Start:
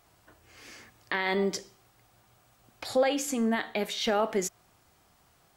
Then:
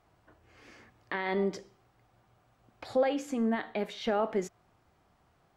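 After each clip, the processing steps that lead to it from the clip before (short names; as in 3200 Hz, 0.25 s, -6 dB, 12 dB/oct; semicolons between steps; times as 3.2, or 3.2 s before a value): LPF 1500 Hz 6 dB/oct; gain -1.5 dB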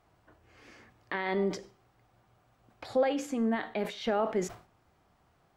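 sustainer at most 140 dB/s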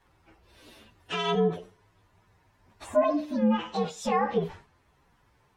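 inharmonic rescaling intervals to 124%; treble ducked by the level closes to 2000 Hz, closed at -26.5 dBFS; gain +6.5 dB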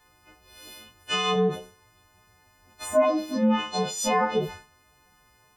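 frequency quantiser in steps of 3 st; gain +2 dB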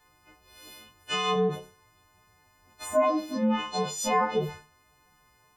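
resonator 150 Hz, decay 0.32 s, harmonics all, mix 60%; gain +3.5 dB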